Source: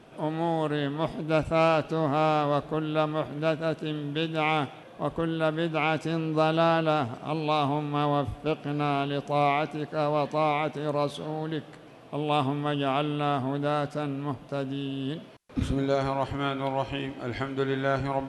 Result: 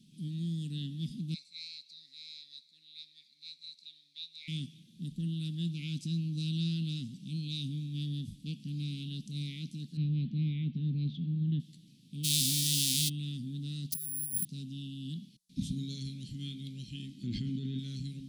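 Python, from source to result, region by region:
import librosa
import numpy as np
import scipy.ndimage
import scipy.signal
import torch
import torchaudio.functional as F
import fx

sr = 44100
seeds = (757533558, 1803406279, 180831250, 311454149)

y = fx.chain(x, sr, fx.double_bandpass(hz=3000.0, octaves=0.88),
    fx.tilt_eq(slope=2.5), at=(1.34, 4.48))
y = fx.chain(y, sr, fx.lowpass(hz=3100.0, slope=24),
    fx.low_shelf(hz=240.0, db=11.0), at=(9.97, 11.6))
y = fx.envelope_flatten(y, sr, power=0.3, at=(12.23, 13.08), fade=0.02)
y = fx.highpass(y, sr, hz=200.0, slope=6, at=(12.23, 13.08), fade=0.02)
y = fx.env_flatten(y, sr, amount_pct=70, at=(12.23, 13.08), fade=0.02)
y = fx.chain(y, sr, fx.over_compress(threshold_db=-41.0, ratio=-1.0),
    fx.resample_bad(factor=4, down='none', up='zero_stuff'), at=(13.92, 14.45))
y = fx.chain(y, sr, fx.lowpass(hz=1600.0, slope=6),
    fx.env_flatten(amount_pct=100), at=(17.23, 17.79))
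y = scipy.signal.sosfilt(scipy.signal.ellip(3, 1.0, 80, [190.0, 3900.0], 'bandstop', fs=sr, output='sos'), y)
y = fx.low_shelf_res(y, sr, hz=130.0, db=-12.0, q=1.5)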